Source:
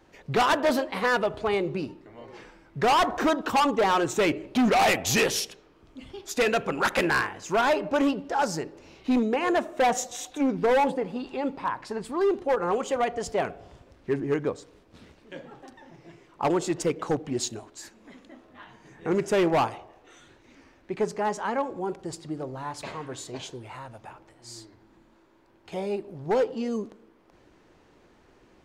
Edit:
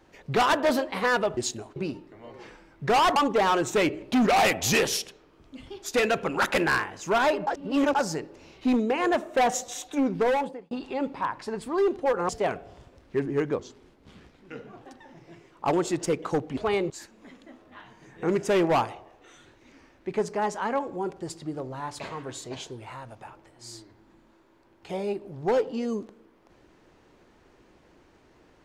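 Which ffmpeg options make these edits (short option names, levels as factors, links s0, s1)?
-filter_complex "[0:a]asplit=12[s0][s1][s2][s3][s4][s5][s6][s7][s8][s9][s10][s11];[s0]atrim=end=1.372[s12];[s1]atrim=start=17.338:end=17.732[s13];[s2]atrim=start=1.698:end=3.102[s14];[s3]atrim=start=3.588:end=7.902[s15];[s4]atrim=start=7.898:end=8.382,asetpts=PTS-STARTPTS,areverse[s16];[s5]atrim=start=8.378:end=11.14,asetpts=PTS-STARTPTS,afade=t=out:st=2.232:d=0.53[s17];[s6]atrim=start=11.14:end=12.722,asetpts=PTS-STARTPTS,afade=t=in:d=0.004:c=hsin[s18];[s7]atrim=start=13.228:end=14.534[s19];[s8]atrim=start=14.53:end=15.58,asetpts=PTS-STARTPTS,asetrate=37926,aresample=44100,atrim=end_sample=53843,asetpts=PTS-STARTPTS[s20];[s9]atrim=start=15.576:end=17.342[s21];[s10]atrim=start=1.368:end=1.702[s22];[s11]atrim=start=17.728[s23];[s12][s13]acrossfade=d=0.004:c1=hsin:c2=hsin[s24];[s24][s14]acrossfade=d=0.004:c1=hsin:c2=hsin[s25];[s25][s15]acrossfade=d=0.004:c1=hsin:c2=hsin[s26];[s26][s16]acrossfade=d=0.004:c1=hsin:c2=hsin[s27];[s17][s18]concat=n=2:v=0:a=1[s28];[s27][s28]acrossfade=d=0.004:c1=hsin:c2=hsin[s29];[s29][s19]acrossfade=d=0.004:c1=hsin:c2=hsin[s30];[s30][s20]acrossfade=d=0.004:c1=hsin:c2=hsin[s31];[s31][s21]acrossfade=d=0.004:c1=hsin:c2=hsin[s32];[s32][s22]acrossfade=d=0.004:c1=hsin:c2=hsin[s33];[s33][s23]acrossfade=d=0.004:c1=hsin:c2=hsin"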